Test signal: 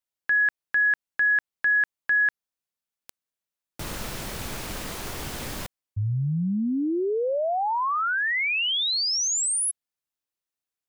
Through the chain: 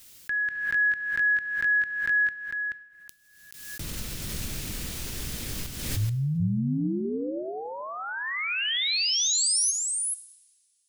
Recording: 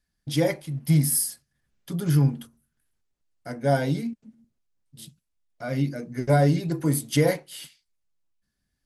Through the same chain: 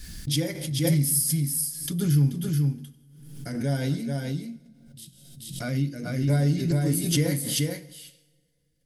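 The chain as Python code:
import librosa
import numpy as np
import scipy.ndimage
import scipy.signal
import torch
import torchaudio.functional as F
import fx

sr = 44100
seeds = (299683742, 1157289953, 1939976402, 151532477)

y = fx.peak_eq(x, sr, hz=840.0, db=-14.5, octaves=2.2)
y = y + 10.0 ** (-3.5 / 20.0) * np.pad(y, (int(431 * sr / 1000.0), 0))[:len(y)]
y = fx.rev_double_slope(y, sr, seeds[0], early_s=0.88, late_s=3.2, knee_db=-24, drr_db=13.0)
y = fx.pre_swell(y, sr, db_per_s=49.0)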